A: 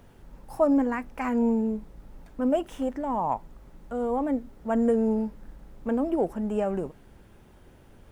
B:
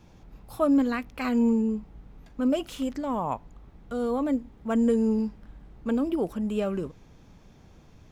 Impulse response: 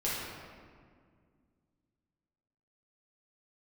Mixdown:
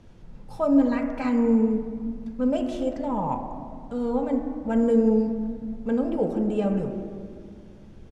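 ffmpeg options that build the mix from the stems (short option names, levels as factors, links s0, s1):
-filter_complex "[0:a]volume=0.794,asplit=2[s0][s1];[s1]volume=0.531[s2];[1:a]volume=-1,adelay=2.6,volume=0.841[s3];[2:a]atrim=start_sample=2205[s4];[s2][s4]afir=irnorm=-1:irlink=0[s5];[s0][s3][s5]amix=inputs=3:normalize=0,lowpass=6100,equalizer=f=1200:t=o:w=3:g=-6"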